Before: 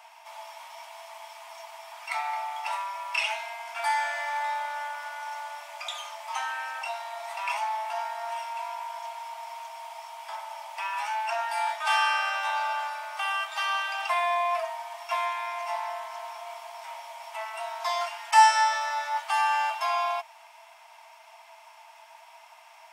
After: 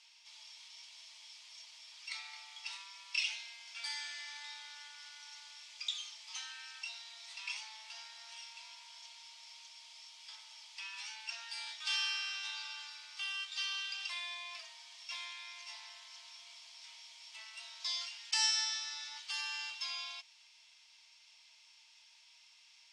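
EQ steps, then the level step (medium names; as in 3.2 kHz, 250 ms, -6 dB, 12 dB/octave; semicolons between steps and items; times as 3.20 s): ladder band-pass 5.4 kHz, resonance 35%; distance through air 85 m; treble shelf 5.6 kHz +5.5 dB; +11.0 dB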